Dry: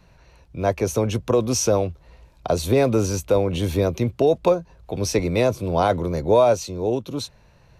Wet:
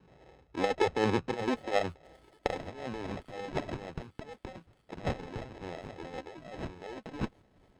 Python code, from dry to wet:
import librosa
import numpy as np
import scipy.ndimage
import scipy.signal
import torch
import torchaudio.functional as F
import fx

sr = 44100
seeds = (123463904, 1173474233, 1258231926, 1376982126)

p1 = fx.over_compress(x, sr, threshold_db=-24.0, ratio=-1.0)
p2 = fx.phaser_stages(p1, sr, stages=12, low_hz=110.0, high_hz=1900.0, hz=1.1, feedback_pct=25)
p3 = fx.filter_sweep_bandpass(p2, sr, from_hz=450.0, to_hz=2700.0, start_s=1.42, end_s=3.79, q=1.6)
p4 = fx.sample_hold(p3, sr, seeds[0], rate_hz=1300.0, jitter_pct=0)
p5 = fx.air_absorb(p4, sr, metres=130.0)
p6 = p5 + fx.echo_wet_highpass(p5, sr, ms=757, feedback_pct=57, hz=5100.0, wet_db=-17.0, dry=0)
p7 = fx.running_max(p6, sr, window=5)
y = p7 * 10.0 ** (4.0 / 20.0)